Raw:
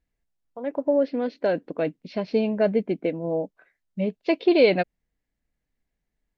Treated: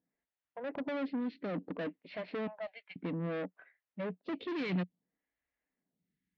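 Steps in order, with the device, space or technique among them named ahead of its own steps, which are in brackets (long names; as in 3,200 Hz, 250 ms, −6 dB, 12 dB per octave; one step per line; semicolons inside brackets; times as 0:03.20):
0:02.47–0:02.96: Butterworth high-pass 720 Hz 48 dB per octave
vibe pedal into a guitar amplifier (phaser with staggered stages 0.6 Hz; tube saturation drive 35 dB, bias 0.35; loudspeaker in its box 110–3,700 Hz, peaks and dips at 180 Hz +9 dB, 270 Hz +5 dB, 1,900 Hz +4 dB)
level −1 dB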